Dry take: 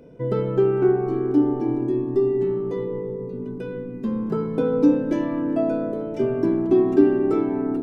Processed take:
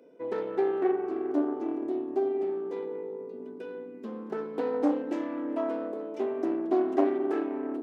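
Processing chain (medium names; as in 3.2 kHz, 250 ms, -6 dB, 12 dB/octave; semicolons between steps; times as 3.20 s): self-modulated delay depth 0.51 ms; high-pass 270 Hz 24 dB/octave; trim -7 dB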